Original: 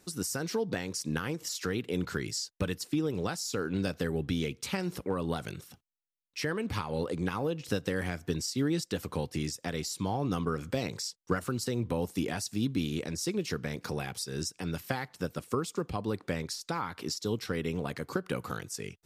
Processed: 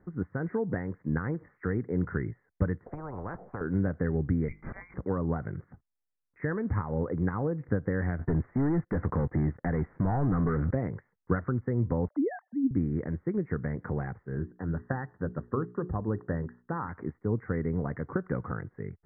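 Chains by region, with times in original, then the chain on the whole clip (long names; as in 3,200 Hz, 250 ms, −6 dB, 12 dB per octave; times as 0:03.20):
0:02.86–0:03.61: drawn EQ curve 300 Hz 0 dB, 530 Hz +9 dB, 1,900 Hz −25 dB, 5,800 Hz −4 dB, 12,000 Hz +8 dB + every bin compressed towards the loudest bin 10 to 1
0:04.48–0:04.94: voice inversion scrambler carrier 2,500 Hz + mains-hum notches 50/100/150/200/250/300/350/400/450/500 Hz + compressor whose output falls as the input rises −37 dBFS, ratio −0.5
0:08.19–0:10.71: leveller curve on the samples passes 3 + downward compressor 3 to 1, threshold −29 dBFS
0:12.08–0:12.71: three sine waves on the formant tracks + low-pass filter 1,800 Hz 24 dB per octave + dynamic equaliser 960 Hz, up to +5 dB, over −47 dBFS, Q 0.84
0:14.35–0:16.89: Chebyshev low-pass filter 1,900 Hz, order 8 + mains-hum notches 60/120/180/240/300/360/420 Hz
whole clip: Butterworth low-pass 2,000 Hz 96 dB per octave; low-shelf EQ 160 Hz +11.5 dB; level −1 dB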